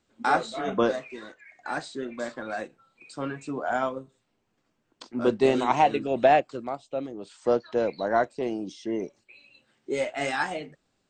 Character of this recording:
background noise floor −75 dBFS
spectral slope −3.5 dB per octave

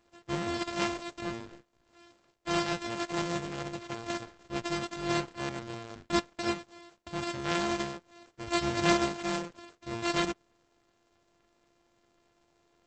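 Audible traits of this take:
a buzz of ramps at a fixed pitch in blocks of 128 samples
Opus

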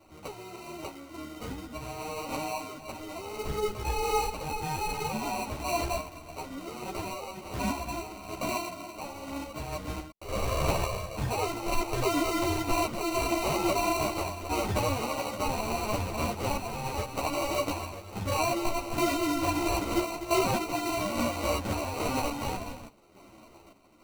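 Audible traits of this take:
sample-and-hold tremolo
aliases and images of a low sample rate 1,700 Hz, jitter 0%
a shimmering, thickened sound

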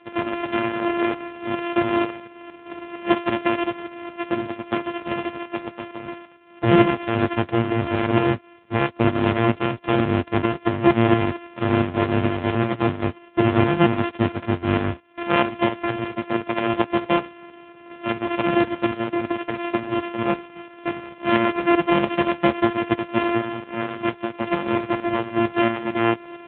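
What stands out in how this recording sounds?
a buzz of ramps at a fixed pitch in blocks of 128 samples
tremolo saw up 4.4 Hz, depth 55%
AMR narrowband

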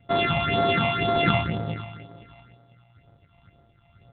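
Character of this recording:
a buzz of ramps at a fixed pitch in blocks of 64 samples
tremolo triangle 1.8 Hz, depth 45%
phaser sweep stages 6, 2 Hz, lowest notch 400–2,600 Hz
G.726

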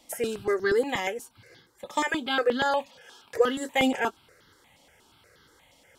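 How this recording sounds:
notches that jump at a steady rate 8.4 Hz 410–2,400 Hz

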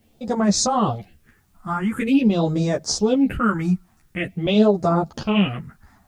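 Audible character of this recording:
phaser sweep stages 4, 0.46 Hz, lowest notch 480–2,800 Hz
a quantiser's noise floor 12 bits, dither triangular
a shimmering, thickened sound

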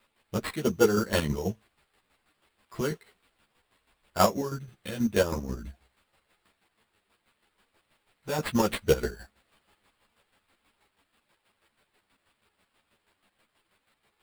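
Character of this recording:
a quantiser's noise floor 12 bits, dither triangular
chopped level 6.2 Hz, depth 60%, duty 35%
aliases and images of a low sample rate 6,100 Hz, jitter 0%
a shimmering, thickened sound

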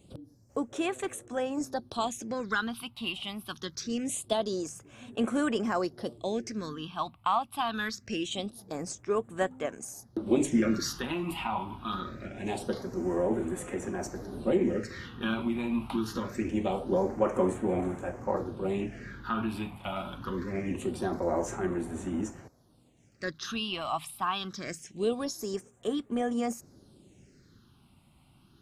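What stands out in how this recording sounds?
phaser sweep stages 6, 0.24 Hz, lowest notch 440–4,800 Hz

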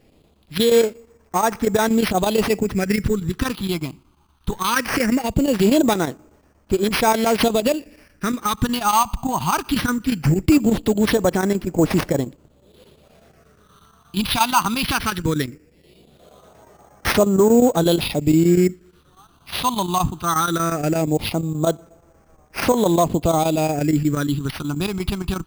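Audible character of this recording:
chopped level 8.4 Hz, depth 60%, duty 85%
phaser sweep stages 6, 0.19 Hz, lowest notch 490–3,100 Hz
aliases and images of a low sample rate 7,400 Hz, jitter 0%

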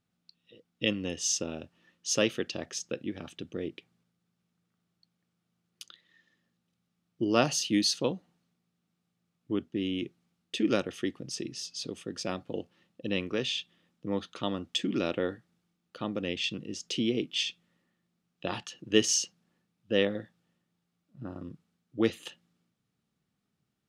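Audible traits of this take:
background noise floor −81 dBFS
spectral slope −3.0 dB per octave

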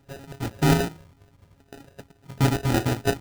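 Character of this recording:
a buzz of ramps at a fixed pitch in blocks of 64 samples
phaser sweep stages 4, 2.2 Hz, lowest notch 370–1,200 Hz
aliases and images of a low sample rate 1,100 Hz, jitter 0%

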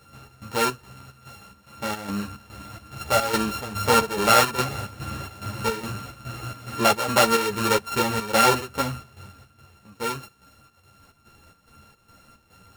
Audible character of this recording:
a buzz of ramps at a fixed pitch in blocks of 32 samples
chopped level 2.4 Hz, depth 65%, duty 65%
a shimmering, thickened sound

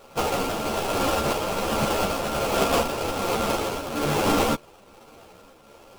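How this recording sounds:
a buzz of ramps at a fixed pitch in blocks of 32 samples
tremolo triangle 1.2 Hz, depth 45%
aliases and images of a low sample rate 1,900 Hz, jitter 20%
a shimmering, thickened sound

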